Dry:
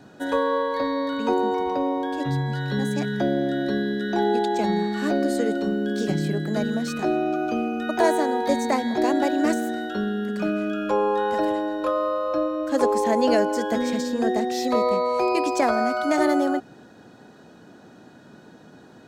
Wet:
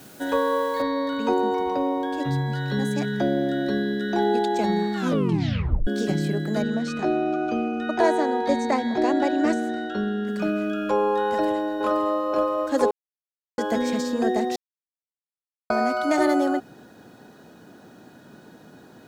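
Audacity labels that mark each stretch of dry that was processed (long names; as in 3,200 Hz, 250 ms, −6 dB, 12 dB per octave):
0.820000	0.820000	noise floor change −50 dB −68 dB
4.950000	4.950000	tape stop 0.92 s
6.620000	10.270000	high-frequency loss of the air 66 metres
11.280000	12.140000	delay throw 520 ms, feedback 50%, level −5.5 dB
12.910000	13.580000	silence
14.560000	15.700000	silence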